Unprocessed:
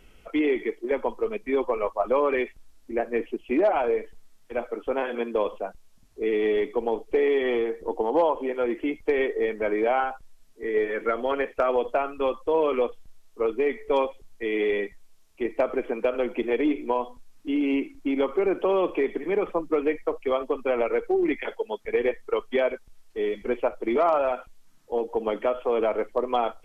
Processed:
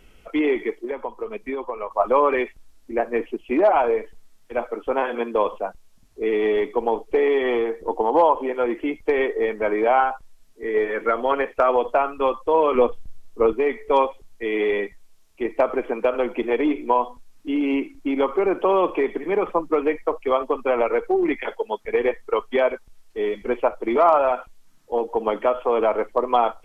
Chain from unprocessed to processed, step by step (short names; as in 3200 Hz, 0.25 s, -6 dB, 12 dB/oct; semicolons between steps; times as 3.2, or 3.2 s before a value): dynamic EQ 990 Hz, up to +7 dB, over -40 dBFS, Q 1.4; 0.83–1.91 compressor 10:1, threshold -27 dBFS, peak gain reduction 11 dB; 12.75–13.53 low shelf 340 Hz +10.5 dB; gain +2 dB